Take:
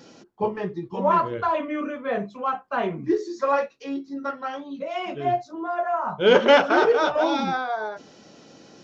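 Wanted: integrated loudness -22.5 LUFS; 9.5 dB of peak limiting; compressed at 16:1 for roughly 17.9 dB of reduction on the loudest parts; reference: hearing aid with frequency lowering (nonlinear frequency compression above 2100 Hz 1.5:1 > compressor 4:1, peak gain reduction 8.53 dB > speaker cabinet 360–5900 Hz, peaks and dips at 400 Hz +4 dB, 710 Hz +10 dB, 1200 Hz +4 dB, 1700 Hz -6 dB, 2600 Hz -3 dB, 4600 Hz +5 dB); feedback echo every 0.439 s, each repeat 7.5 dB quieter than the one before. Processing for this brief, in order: compressor 16:1, threshold -29 dBFS; limiter -28 dBFS; feedback echo 0.439 s, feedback 42%, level -7.5 dB; nonlinear frequency compression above 2100 Hz 1.5:1; compressor 4:1, threshold -40 dBFS; speaker cabinet 360–5900 Hz, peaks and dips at 400 Hz +4 dB, 710 Hz +10 dB, 1200 Hz +4 dB, 1700 Hz -6 dB, 2600 Hz -3 dB, 4600 Hz +5 dB; gain +17 dB

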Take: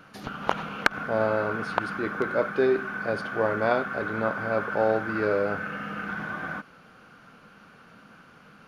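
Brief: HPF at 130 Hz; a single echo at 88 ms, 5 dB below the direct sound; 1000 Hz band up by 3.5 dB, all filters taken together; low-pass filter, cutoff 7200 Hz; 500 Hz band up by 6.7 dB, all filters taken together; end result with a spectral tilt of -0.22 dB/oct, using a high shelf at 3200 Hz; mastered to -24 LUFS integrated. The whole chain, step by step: HPF 130 Hz; LPF 7200 Hz; bell 500 Hz +7.5 dB; bell 1000 Hz +3.5 dB; high shelf 3200 Hz -8.5 dB; echo 88 ms -5 dB; gain -2.5 dB

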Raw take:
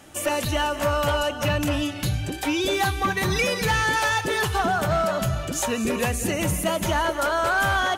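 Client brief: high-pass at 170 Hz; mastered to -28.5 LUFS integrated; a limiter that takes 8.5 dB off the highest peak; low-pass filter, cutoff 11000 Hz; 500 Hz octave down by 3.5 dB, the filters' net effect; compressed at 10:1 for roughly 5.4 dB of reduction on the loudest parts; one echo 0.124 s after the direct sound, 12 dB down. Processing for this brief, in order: HPF 170 Hz; LPF 11000 Hz; bell 500 Hz -4.5 dB; compressor 10:1, threshold -25 dBFS; limiter -25.5 dBFS; echo 0.124 s -12 dB; gain +4.5 dB

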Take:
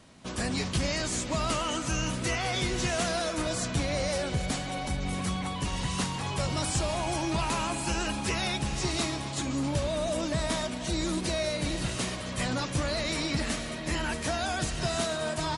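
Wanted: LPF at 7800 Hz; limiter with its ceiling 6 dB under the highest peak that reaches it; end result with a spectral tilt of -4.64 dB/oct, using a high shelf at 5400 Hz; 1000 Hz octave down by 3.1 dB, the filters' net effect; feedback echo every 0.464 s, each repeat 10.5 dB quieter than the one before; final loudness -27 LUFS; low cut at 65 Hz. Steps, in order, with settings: HPF 65 Hz; LPF 7800 Hz; bell 1000 Hz -4 dB; high shelf 5400 Hz -6.5 dB; limiter -24 dBFS; feedback echo 0.464 s, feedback 30%, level -10.5 dB; gain +6 dB

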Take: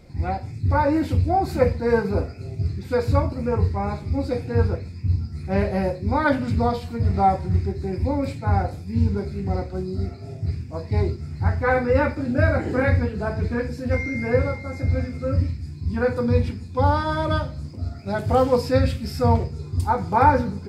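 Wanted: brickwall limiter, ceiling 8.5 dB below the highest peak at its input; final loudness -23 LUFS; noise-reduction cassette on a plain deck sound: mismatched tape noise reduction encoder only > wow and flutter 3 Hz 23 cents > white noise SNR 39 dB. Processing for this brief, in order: limiter -12.5 dBFS; mismatched tape noise reduction encoder only; wow and flutter 3 Hz 23 cents; white noise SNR 39 dB; gain +1.5 dB

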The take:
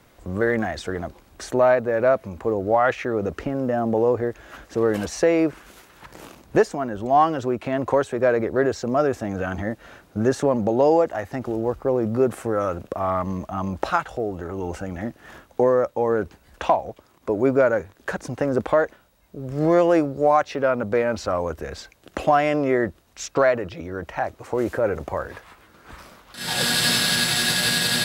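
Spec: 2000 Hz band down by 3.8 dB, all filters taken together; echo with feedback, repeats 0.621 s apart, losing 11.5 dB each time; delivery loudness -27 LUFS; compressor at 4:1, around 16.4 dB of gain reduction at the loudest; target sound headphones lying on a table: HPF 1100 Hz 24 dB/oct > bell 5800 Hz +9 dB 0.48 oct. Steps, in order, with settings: bell 2000 Hz -5 dB; compressor 4:1, threshold -34 dBFS; HPF 1100 Hz 24 dB/oct; bell 5800 Hz +9 dB 0.48 oct; feedback echo 0.621 s, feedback 27%, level -11.5 dB; gain +12.5 dB

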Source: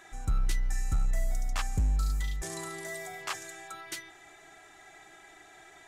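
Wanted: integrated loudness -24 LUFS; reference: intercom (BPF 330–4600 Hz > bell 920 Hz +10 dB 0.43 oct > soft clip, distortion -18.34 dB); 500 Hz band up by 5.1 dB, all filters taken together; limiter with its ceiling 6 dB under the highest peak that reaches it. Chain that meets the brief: bell 500 Hz +7.5 dB; limiter -26 dBFS; BPF 330–4600 Hz; bell 920 Hz +10 dB 0.43 oct; soft clip -29.5 dBFS; gain +19 dB

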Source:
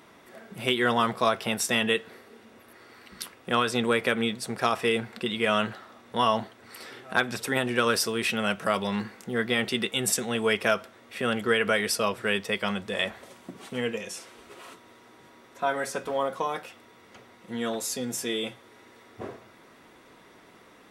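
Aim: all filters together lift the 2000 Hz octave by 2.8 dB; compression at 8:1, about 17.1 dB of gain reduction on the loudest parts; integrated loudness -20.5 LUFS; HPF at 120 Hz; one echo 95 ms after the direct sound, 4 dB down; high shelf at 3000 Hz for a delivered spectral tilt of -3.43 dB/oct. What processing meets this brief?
HPF 120 Hz; bell 2000 Hz +6.5 dB; high shelf 3000 Hz -8 dB; compressor 8:1, threshold -36 dBFS; echo 95 ms -4 dB; gain +19 dB

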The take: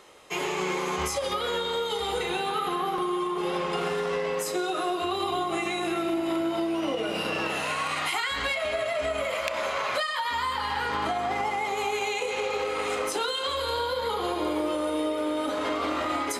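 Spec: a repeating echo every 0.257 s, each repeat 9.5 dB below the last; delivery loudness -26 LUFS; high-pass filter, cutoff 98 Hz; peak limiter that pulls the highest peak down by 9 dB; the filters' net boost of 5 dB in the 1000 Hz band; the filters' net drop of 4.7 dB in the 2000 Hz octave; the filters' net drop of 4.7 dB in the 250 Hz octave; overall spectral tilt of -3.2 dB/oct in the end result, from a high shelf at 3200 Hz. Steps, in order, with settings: HPF 98 Hz; bell 250 Hz -8.5 dB; bell 1000 Hz +9 dB; bell 2000 Hz -8 dB; high shelf 3200 Hz -3 dB; limiter -22.5 dBFS; feedback echo 0.257 s, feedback 33%, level -9.5 dB; gain +4 dB

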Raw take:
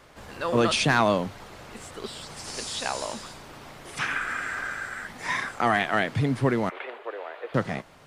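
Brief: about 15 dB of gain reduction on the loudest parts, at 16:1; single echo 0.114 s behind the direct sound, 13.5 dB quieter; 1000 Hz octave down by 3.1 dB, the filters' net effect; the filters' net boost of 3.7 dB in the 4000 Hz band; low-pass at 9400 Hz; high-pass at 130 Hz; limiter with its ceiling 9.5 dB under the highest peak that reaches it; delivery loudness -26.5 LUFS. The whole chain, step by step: HPF 130 Hz; LPF 9400 Hz; bell 1000 Hz -4.5 dB; bell 4000 Hz +5 dB; compressor 16:1, threshold -33 dBFS; limiter -28 dBFS; echo 0.114 s -13.5 dB; gain +12 dB

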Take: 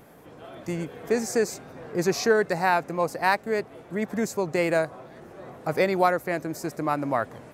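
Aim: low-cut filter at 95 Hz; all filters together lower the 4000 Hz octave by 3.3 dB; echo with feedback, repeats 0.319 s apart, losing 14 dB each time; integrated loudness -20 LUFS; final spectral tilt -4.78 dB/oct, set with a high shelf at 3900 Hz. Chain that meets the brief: HPF 95 Hz; high shelf 3900 Hz +4.5 dB; bell 4000 Hz -7.5 dB; feedback echo 0.319 s, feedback 20%, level -14 dB; gain +6 dB

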